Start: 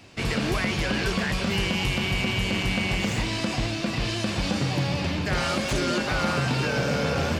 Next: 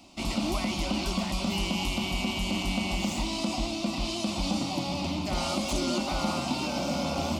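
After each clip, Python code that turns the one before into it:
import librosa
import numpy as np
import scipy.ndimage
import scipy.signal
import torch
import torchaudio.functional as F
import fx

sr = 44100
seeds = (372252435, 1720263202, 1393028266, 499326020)

y = fx.fixed_phaser(x, sr, hz=450.0, stages=6)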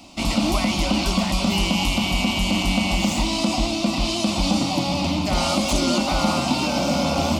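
y = fx.notch(x, sr, hz=370.0, q=12.0)
y = F.gain(torch.from_numpy(y), 8.5).numpy()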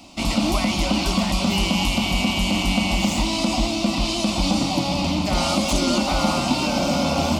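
y = fx.echo_diffused(x, sr, ms=608, feedback_pct=42, wet_db=-14)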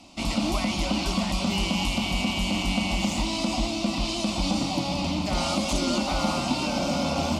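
y = scipy.signal.sosfilt(scipy.signal.butter(2, 12000.0, 'lowpass', fs=sr, output='sos'), x)
y = F.gain(torch.from_numpy(y), -5.0).numpy()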